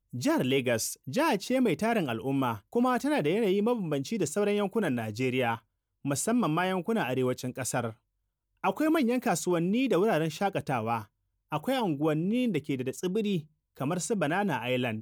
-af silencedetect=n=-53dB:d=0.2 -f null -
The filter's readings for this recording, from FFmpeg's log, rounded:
silence_start: 5.60
silence_end: 6.05 | silence_duration: 0.45
silence_start: 7.95
silence_end: 8.64 | silence_duration: 0.68
silence_start: 11.06
silence_end: 11.51 | silence_duration: 0.45
silence_start: 13.46
silence_end: 13.75 | silence_duration: 0.29